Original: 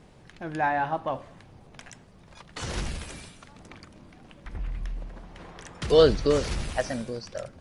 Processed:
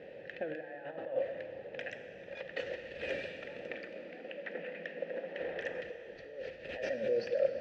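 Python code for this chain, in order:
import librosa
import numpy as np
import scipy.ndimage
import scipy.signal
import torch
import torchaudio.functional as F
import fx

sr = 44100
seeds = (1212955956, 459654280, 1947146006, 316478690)

y = fx.steep_highpass(x, sr, hz=160.0, slope=96, at=(3.73, 5.4))
y = fx.over_compress(y, sr, threshold_db=-39.0, ratio=-1.0)
y = fx.leveller(y, sr, passes=1, at=(6.66, 7.24))
y = fx.vowel_filter(y, sr, vowel='e')
y = fx.air_absorb(y, sr, metres=140.0)
y = fx.rev_plate(y, sr, seeds[0], rt60_s=3.7, hf_ratio=1.0, predelay_ms=0, drr_db=7.5)
y = y * 10.0 ** (9.5 / 20.0)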